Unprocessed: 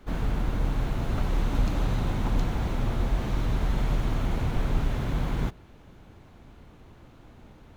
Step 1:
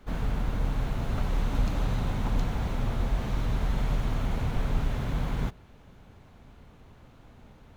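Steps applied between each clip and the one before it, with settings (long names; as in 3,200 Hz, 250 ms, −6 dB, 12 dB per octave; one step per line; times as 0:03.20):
parametric band 330 Hz −6.5 dB 0.27 octaves
level −1.5 dB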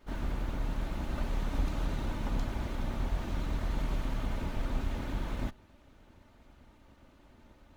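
lower of the sound and its delayed copy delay 3.3 ms
pitch vibrato 10 Hz 51 cents
level −4 dB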